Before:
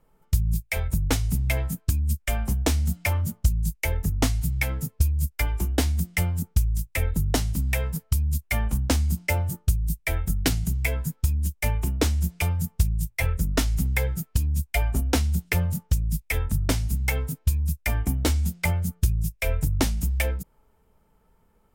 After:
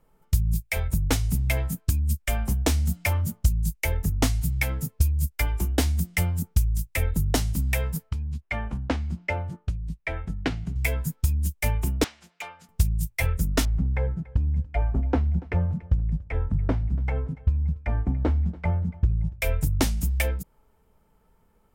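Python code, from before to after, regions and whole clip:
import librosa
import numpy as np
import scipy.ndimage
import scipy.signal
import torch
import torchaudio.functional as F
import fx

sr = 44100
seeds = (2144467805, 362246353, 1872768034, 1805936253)

y = fx.chain(x, sr, fx.lowpass(hz=2400.0, slope=12),
    fx.low_shelf(hz=150.0, db=-8.0), at=(8.09, 10.76))
y = fx.chain(y, sr, fx.bandpass_edges(low_hz=790.0, high_hz=3100.0),
    fx.clip_hard(threshold_db=-31.5), at=(12.04, 12.69))
y = fx.chain(y, sr, fx.lowpass(hz=1200.0, slope=12),
    fx.echo_feedback(ms=286, feedback_pct=42, wet_db=-21.5), at=(13.65, 19.42))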